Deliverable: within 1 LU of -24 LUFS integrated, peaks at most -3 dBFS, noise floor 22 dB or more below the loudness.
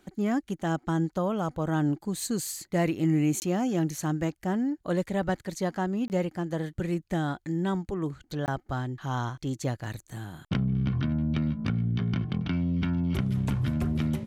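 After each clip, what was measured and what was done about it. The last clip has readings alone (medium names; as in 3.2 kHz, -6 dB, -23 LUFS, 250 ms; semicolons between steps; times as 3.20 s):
dropouts 3; longest dropout 19 ms; loudness -29.5 LUFS; peak level -15.0 dBFS; loudness target -24.0 LUFS
-> interpolate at 3.40/6.08/8.46 s, 19 ms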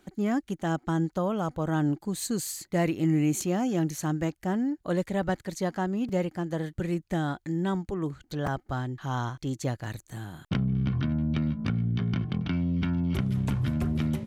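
dropouts 0; loudness -29.5 LUFS; peak level -15.0 dBFS; loudness target -24.0 LUFS
-> trim +5.5 dB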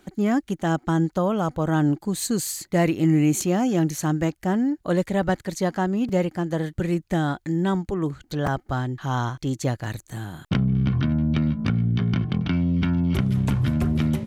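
loudness -24.0 LUFS; peak level -9.5 dBFS; noise floor -62 dBFS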